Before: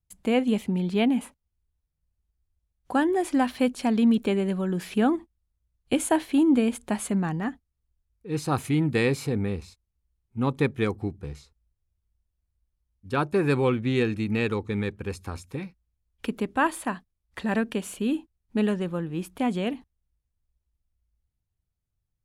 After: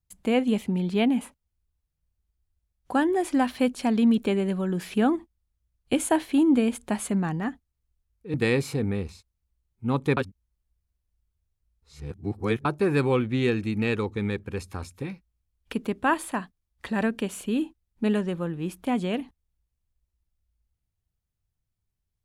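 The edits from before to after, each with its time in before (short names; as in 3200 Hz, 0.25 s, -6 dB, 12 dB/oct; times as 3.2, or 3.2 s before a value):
8.34–8.87 cut
10.7–13.18 reverse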